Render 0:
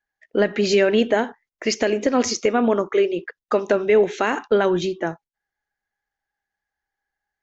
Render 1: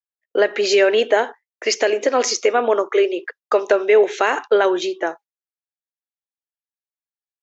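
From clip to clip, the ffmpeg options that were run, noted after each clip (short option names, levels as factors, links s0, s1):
-af "agate=range=0.0224:threshold=0.02:ratio=3:detection=peak,highpass=f=370:w=0.5412,highpass=f=370:w=1.3066,volume=1.58"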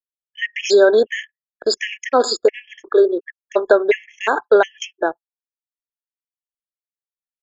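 -af "anlmdn=251,afftfilt=real='re*gt(sin(2*PI*1.4*pts/sr)*(1-2*mod(floor(b*sr/1024/1700),2)),0)':imag='im*gt(sin(2*PI*1.4*pts/sr)*(1-2*mod(floor(b*sr/1024/1700),2)),0)':win_size=1024:overlap=0.75,volume=1.5"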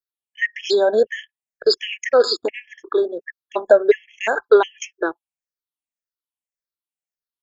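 -af "afftfilt=real='re*pow(10,14/40*sin(2*PI*(0.58*log(max(b,1)*sr/1024/100)/log(2)-(-1.8)*(pts-256)/sr)))':imag='im*pow(10,14/40*sin(2*PI*(0.58*log(max(b,1)*sr/1024/100)/log(2)-(-1.8)*(pts-256)/sr)))':win_size=1024:overlap=0.75,volume=0.631"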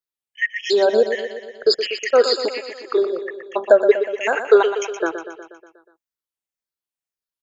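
-af "aecho=1:1:121|242|363|484|605|726|847:0.335|0.201|0.121|0.0724|0.0434|0.026|0.0156"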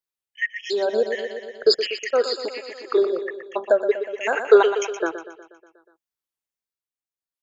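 -af "tremolo=f=0.64:d=0.55"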